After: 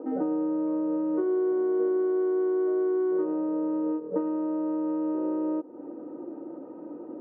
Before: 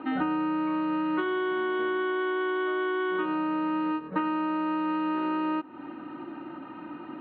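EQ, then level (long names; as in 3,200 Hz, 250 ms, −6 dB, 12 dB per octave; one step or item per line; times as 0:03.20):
high-pass filter 340 Hz 6 dB per octave
low-pass with resonance 490 Hz, resonance Q 6.1
0.0 dB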